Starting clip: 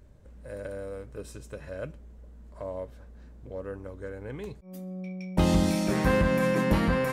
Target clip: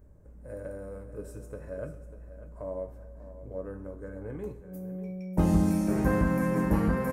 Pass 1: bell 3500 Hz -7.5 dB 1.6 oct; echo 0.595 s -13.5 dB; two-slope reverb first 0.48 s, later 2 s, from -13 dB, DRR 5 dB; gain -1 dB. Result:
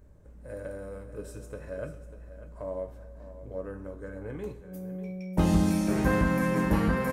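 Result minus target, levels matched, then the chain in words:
4000 Hz band +8.5 dB
bell 3500 Hz -18.5 dB 1.6 oct; echo 0.595 s -13.5 dB; two-slope reverb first 0.48 s, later 2 s, from -13 dB, DRR 5 dB; gain -1 dB

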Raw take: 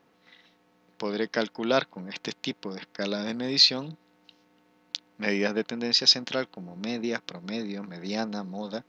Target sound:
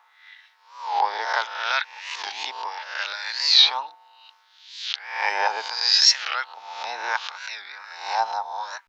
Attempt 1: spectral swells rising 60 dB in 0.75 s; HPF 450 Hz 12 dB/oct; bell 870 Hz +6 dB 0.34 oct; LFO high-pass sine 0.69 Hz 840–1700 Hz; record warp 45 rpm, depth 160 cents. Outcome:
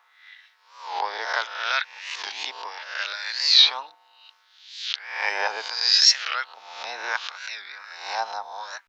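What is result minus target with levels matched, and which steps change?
1000 Hz band -4.5 dB
change: bell 870 Hz +14 dB 0.34 oct

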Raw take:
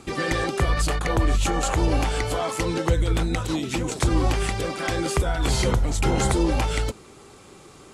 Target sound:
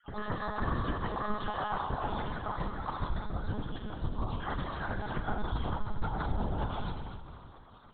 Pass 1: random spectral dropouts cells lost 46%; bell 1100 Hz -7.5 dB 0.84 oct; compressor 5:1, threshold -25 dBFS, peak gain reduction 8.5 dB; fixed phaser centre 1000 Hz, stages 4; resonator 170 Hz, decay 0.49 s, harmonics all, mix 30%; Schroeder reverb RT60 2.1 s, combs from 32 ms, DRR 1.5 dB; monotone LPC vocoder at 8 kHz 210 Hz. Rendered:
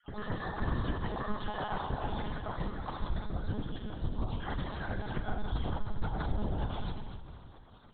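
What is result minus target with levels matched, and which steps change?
1000 Hz band -2.5 dB
remove: bell 1100 Hz -7.5 dB 0.84 oct

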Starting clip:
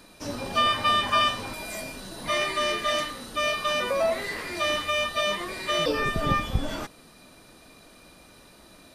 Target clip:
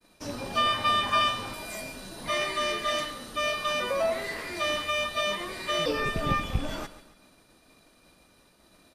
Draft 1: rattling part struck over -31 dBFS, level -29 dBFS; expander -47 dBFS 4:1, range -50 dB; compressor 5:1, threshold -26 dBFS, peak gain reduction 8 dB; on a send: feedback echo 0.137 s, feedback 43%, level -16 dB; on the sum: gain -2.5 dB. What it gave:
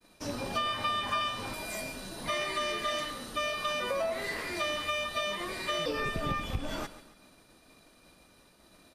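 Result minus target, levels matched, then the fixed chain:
compressor: peak gain reduction +8 dB
rattling part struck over -31 dBFS, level -29 dBFS; expander -47 dBFS 4:1, range -50 dB; on a send: feedback echo 0.137 s, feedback 43%, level -16 dB; on the sum: gain -2.5 dB

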